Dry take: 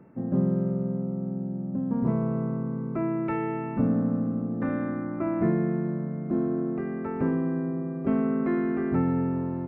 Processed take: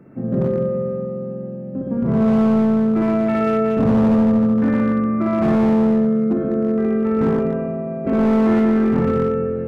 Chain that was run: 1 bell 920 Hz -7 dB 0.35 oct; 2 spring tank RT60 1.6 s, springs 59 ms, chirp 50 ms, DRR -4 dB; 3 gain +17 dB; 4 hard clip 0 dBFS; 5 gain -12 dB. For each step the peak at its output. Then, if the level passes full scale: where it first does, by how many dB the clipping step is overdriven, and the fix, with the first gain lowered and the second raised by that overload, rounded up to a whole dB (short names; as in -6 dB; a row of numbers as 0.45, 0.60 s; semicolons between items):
-13.0, -9.0, +8.0, 0.0, -12.0 dBFS; step 3, 8.0 dB; step 3 +9 dB, step 5 -4 dB